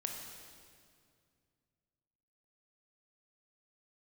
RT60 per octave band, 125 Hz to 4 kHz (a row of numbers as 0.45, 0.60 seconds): 3.2, 2.8, 2.3, 2.1, 1.9, 1.8 seconds